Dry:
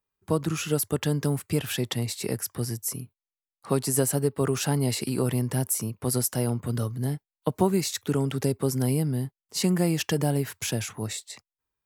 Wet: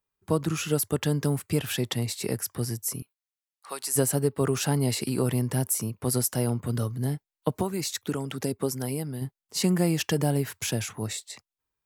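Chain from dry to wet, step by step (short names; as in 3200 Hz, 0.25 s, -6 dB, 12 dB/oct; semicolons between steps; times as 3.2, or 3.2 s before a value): 3.02–3.96 Bessel high-pass 1200 Hz, order 2; 7.61–9.22 harmonic-percussive split harmonic -8 dB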